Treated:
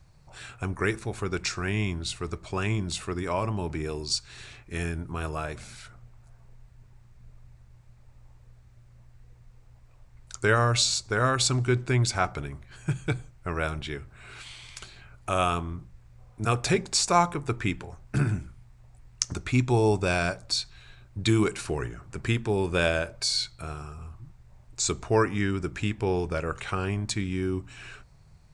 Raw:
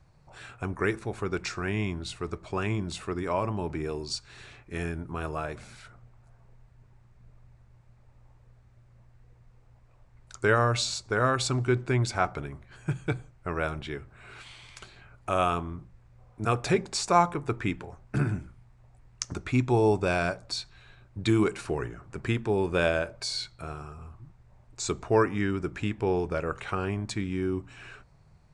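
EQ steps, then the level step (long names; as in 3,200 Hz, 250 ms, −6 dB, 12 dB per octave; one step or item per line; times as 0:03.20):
low-shelf EQ 140 Hz +7 dB
high-shelf EQ 2,500 Hz +9.5 dB
−1.5 dB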